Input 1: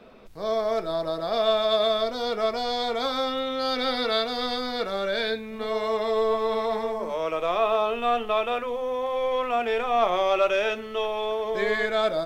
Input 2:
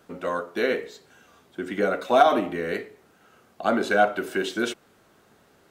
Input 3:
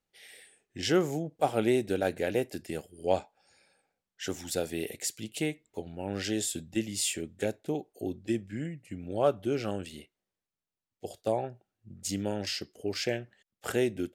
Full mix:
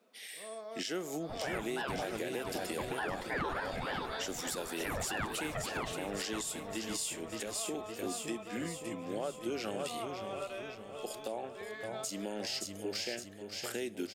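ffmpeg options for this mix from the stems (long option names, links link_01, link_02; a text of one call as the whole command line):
ffmpeg -i stem1.wav -i stem2.wav -i stem3.wav -filter_complex "[0:a]volume=-19.5dB,asplit=2[link_01][link_02];[link_02]volume=-12dB[link_03];[1:a]asoftclip=type=tanh:threshold=-9dB,aeval=exprs='val(0)*sin(2*PI*750*n/s+750*0.7/3.3*sin(2*PI*3.3*n/s))':channel_layout=same,adelay=1200,volume=-5.5dB,asplit=2[link_04][link_05];[link_05]volume=-12dB[link_06];[2:a]highshelf=frequency=2100:gain=8.5,volume=-1dB,asplit=2[link_07][link_08];[link_08]volume=-13.5dB[link_09];[link_01][link_07]amix=inputs=2:normalize=0,highpass=frequency=190:width=0.5412,highpass=frequency=190:width=1.3066,acompressor=threshold=-33dB:ratio=5,volume=0dB[link_10];[link_03][link_06][link_09]amix=inputs=3:normalize=0,aecho=0:1:564|1128|1692|2256|2820|3384|3948|4512:1|0.54|0.292|0.157|0.085|0.0459|0.0248|0.0134[link_11];[link_04][link_10][link_11]amix=inputs=3:normalize=0,alimiter=level_in=2.5dB:limit=-24dB:level=0:latency=1:release=96,volume=-2.5dB" out.wav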